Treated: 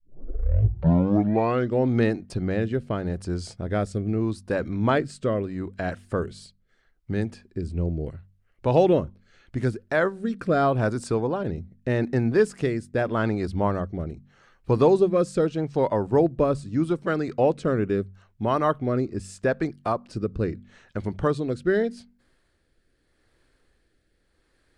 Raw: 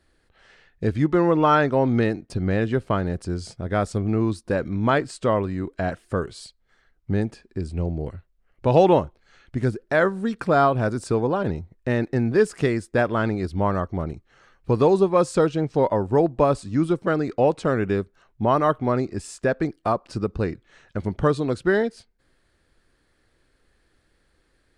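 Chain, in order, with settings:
turntable start at the beginning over 1.89 s
hum removal 47.9 Hz, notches 5
rotating-speaker cabinet horn 0.8 Hz

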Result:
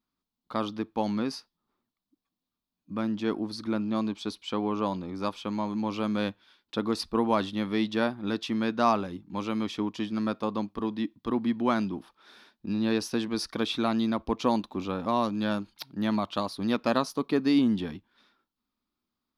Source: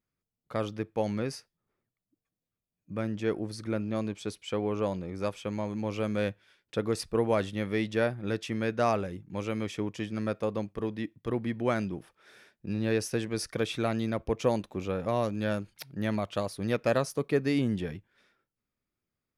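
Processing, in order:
octave-band graphic EQ 125/250/500/1,000/2,000/4,000/8,000 Hz −10/+10/−7/+10/−6/+10/−7 dB

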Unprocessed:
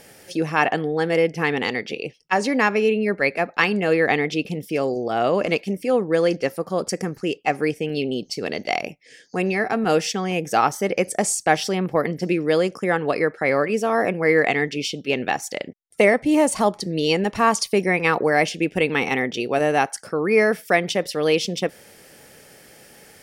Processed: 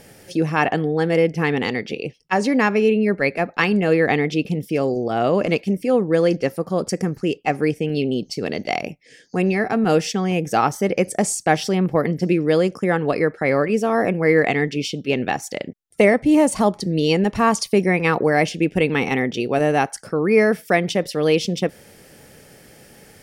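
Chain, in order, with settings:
low-shelf EQ 300 Hz +9 dB
level −1 dB

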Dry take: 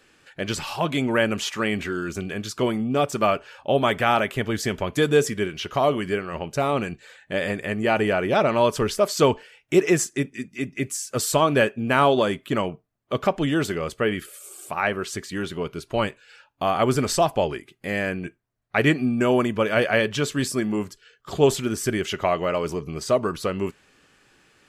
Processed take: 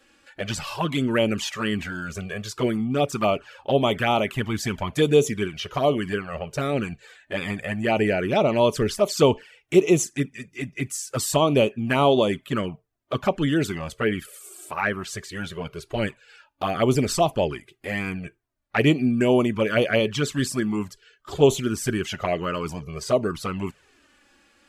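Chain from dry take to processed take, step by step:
flanger swept by the level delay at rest 3.7 ms, full sweep at −16 dBFS
level +2 dB

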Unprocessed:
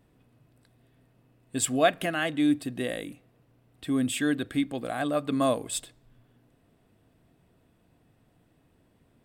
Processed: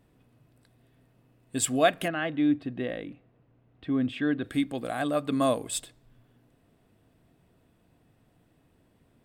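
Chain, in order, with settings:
0:02.08–0:04.44: high-frequency loss of the air 310 metres

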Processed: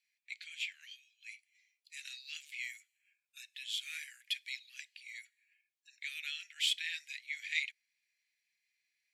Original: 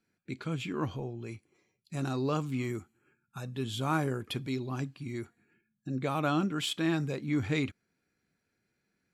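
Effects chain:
Butterworth high-pass 1,900 Hz 72 dB per octave
high-shelf EQ 5,300 Hz −8 dB
level +5 dB

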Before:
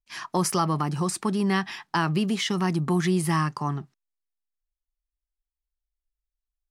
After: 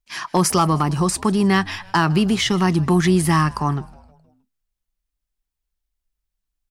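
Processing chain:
hard clipping −15 dBFS, distortion −30 dB
echo with shifted repeats 157 ms, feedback 52%, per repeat −100 Hz, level −22.5 dB
level +7 dB

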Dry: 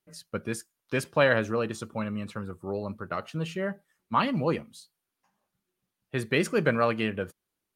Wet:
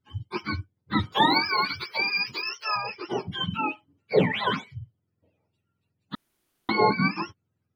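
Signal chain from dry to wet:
frequency axis turned over on the octave scale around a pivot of 710 Hz
0:01.12–0:02.76: spectral tilt +4 dB per octave
0:06.15–0:06.69: fill with room tone
level +5 dB

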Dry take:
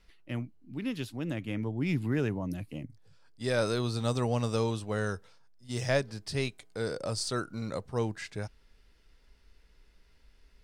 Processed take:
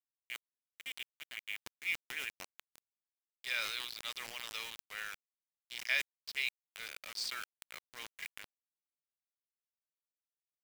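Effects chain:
adaptive Wiener filter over 25 samples
four-pole ladder band-pass 2,700 Hz, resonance 65%
notch filter 2,600 Hz, Q 7.6
bit reduction 10 bits
level that may fall only so fast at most 47 dB per second
level +12.5 dB

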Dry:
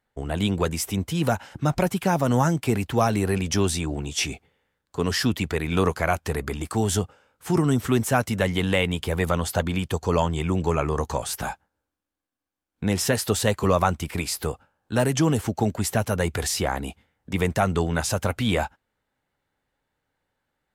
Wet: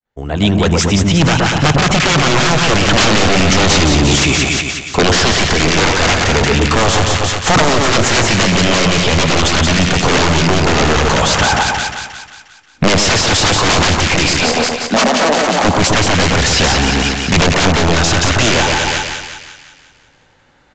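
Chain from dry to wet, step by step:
fade in at the beginning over 2.01 s
dynamic equaliser 2,800 Hz, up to +6 dB, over −42 dBFS, Q 0.74
in parallel at −2.5 dB: output level in coarse steps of 18 dB
on the sum: wrap-around overflow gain 16.5 dB
0:14.33–0:15.65: Chebyshev high-pass with heavy ripple 170 Hz, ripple 9 dB
soft clipping −25 dBFS, distortion −11 dB
on a send: echo with a time of its own for lows and highs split 1,300 Hz, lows 121 ms, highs 178 ms, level −3.5 dB
on the sum: downsampling to 16,000 Hz
boost into a limiter +26 dB
0:02.88–0:04.16: envelope flattener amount 100%
level −3.5 dB

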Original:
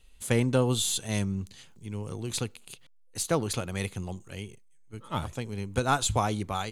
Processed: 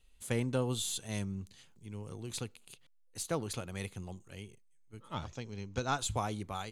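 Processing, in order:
0:05.14–0:05.99: high shelf with overshoot 7,700 Hz −11 dB, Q 3
level −8 dB

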